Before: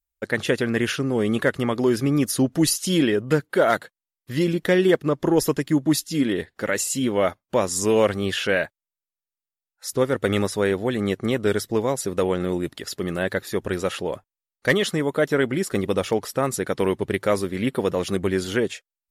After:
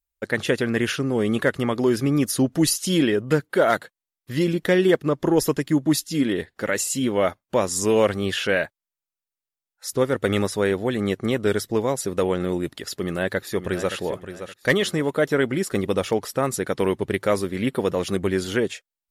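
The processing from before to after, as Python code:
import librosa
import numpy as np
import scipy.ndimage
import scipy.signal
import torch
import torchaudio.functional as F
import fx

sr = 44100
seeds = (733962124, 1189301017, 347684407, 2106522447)

y = fx.echo_throw(x, sr, start_s=12.93, length_s=1.03, ms=570, feedback_pct=30, wet_db=-10.5)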